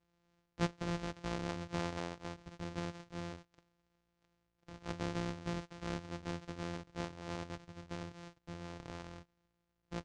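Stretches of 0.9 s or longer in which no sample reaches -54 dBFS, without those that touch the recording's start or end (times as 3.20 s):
3.59–4.68 s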